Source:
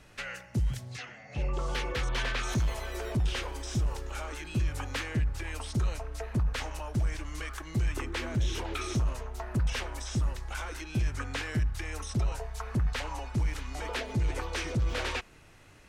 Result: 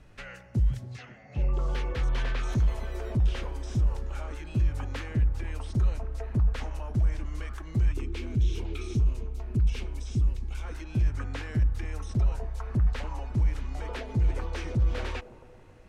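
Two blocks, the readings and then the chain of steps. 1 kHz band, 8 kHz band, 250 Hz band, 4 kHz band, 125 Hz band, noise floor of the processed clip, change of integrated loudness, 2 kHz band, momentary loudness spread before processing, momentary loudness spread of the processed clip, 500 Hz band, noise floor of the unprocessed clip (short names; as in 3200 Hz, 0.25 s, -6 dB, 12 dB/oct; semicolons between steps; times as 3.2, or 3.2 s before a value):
-4.0 dB, -9.0 dB, +1.0 dB, -7.0 dB, +3.5 dB, -50 dBFS, +3.0 dB, -5.5 dB, 7 LU, 8 LU, -1.5 dB, -54 dBFS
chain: tilt -2 dB/oct; on a send: band-limited delay 0.273 s, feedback 54%, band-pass 460 Hz, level -13.5 dB; on the sum: spectral gain 7.92–10.64, 480–2100 Hz -9 dB; gain -3.5 dB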